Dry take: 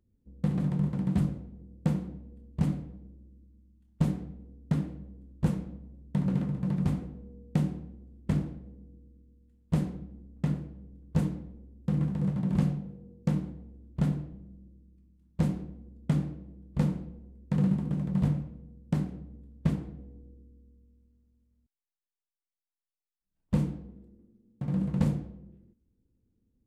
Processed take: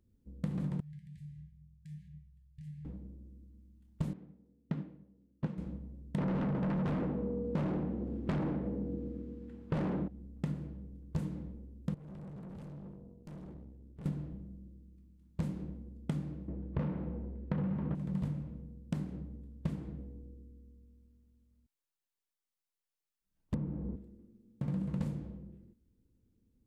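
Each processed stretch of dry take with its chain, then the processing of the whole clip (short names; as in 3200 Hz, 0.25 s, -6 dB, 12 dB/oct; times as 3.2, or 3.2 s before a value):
0.8–2.85 compressor 16:1, threshold -36 dBFS + brick-wall FIR band-stop 180–1600 Hz + resonator 150 Hz, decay 0.33 s, mix 80%
4.13–5.58 BPF 130–3200 Hz + upward expander, over -48 dBFS
6.18–10.08 LPF 2500 Hz 6 dB/oct + overdrive pedal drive 35 dB, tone 1300 Hz, clips at -15 dBFS
11.94–14.06 compressor, threshold -36 dBFS + tube stage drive 45 dB, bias 0.75
16.48–17.95 LPF 2500 Hz + overdrive pedal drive 22 dB, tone 1600 Hz, clips at -15 dBFS + bell 80 Hz +11.5 dB 1.1 oct
23.54–23.96 LPF 1200 Hz + three-band squash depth 100%
whole clip: notch 730 Hz, Q 19; compressor, threshold -33 dBFS; gain +1 dB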